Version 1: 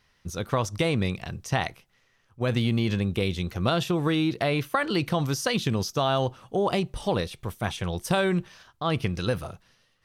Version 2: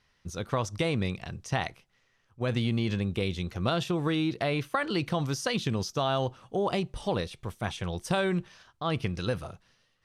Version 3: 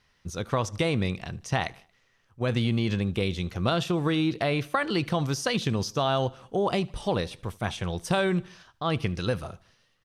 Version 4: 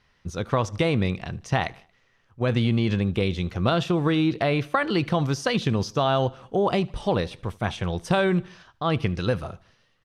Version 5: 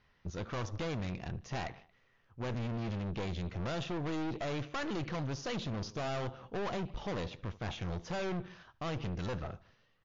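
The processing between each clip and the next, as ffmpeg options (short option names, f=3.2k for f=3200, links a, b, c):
-af "lowpass=10k,volume=-3.5dB"
-af "aecho=1:1:76|152|228:0.0631|0.0328|0.0171,volume=2.5dB"
-af "lowpass=f=3.6k:p=1,volume=3.5dB"
-af "aemphasis=mode=reproduction:type=50kf,aeval=exprs='(tanh(39.8*val(0)+0.5)-tanh(0.5))/39.8':c=same,volume=-2dB" -ar 16000 -c:a libmp3lame -b:a 48k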